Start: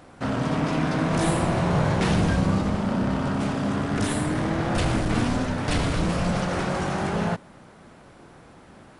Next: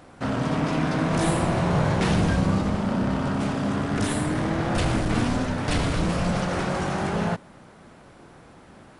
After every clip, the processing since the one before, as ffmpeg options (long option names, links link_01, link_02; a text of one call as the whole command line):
ffmpeg -i in.wav -af anull out.wav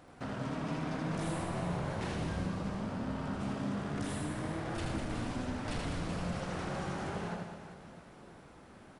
ffmpeg -i in.wav -filter_complex "[0:a]acompressor=threshold=-32dB:ratio=2,asplit=2[link_01][link_02];[link_02]aecho=0:1:80|200|380|650|1055:0.631|0.398|0.251|0.158|0.1[link_03];[link_01][link_03]amix=inputs=2:normalize=0,volume=-8.5dB" out.wav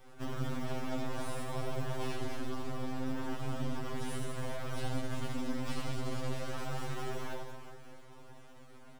ffmpeg -i in.wav -filter_complex "[0:a]acrossover=split=160|800|1500[link_01][link_02][link_03][link_04];[link_03]acrusher=samples=10:mix=1:aa=0.000001[link_05];[link_01][link_02][link_05][link_04]amix=inputs=4:normalize=0,aeval=exprs='max(val(0),0)':channel_layout=same,afftfilt=real='re*2.45*eq(mod(b,6),0)':imag='im*2.45*eq(mod(b,6),0)':win_size=2048:overlap=0.75,volume=5dB" out.wav